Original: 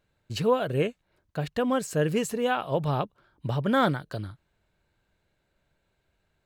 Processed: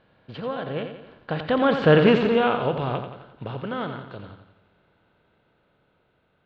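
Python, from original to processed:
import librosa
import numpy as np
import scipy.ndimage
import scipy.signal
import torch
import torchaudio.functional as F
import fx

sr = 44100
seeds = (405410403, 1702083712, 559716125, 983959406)

p1 = fx.bin_compress(x, sr, power=0.6)
p2 = fx.doppler_pass(p1, sr, speed_mps=17, closest_m=4.1, pass_at_s=1.98)
p3 = scipy.signal.sosfilt(scipy.signal.butter(6, 4000.0, 'lowpass', fs=sr, output='sos'), p2)
p4 = p3 + fx.echo_feedback(p3, sr, ms=87, feedback_pct=49, wet_db=-8.0, dry=0)
y = p4 * 10.0 ** (7.5 / 20.0)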